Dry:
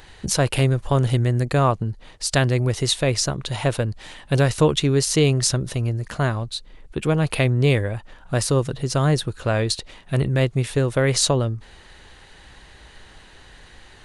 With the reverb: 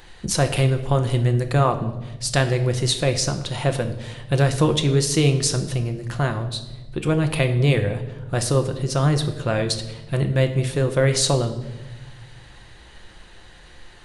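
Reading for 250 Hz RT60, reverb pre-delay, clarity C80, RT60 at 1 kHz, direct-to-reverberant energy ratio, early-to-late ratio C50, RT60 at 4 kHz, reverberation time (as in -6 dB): 1.7 s, 6 ms, 13.5 dB, 0.95 s, 6.5 dB, 11.5 dB, 0.90 s, 1.1 s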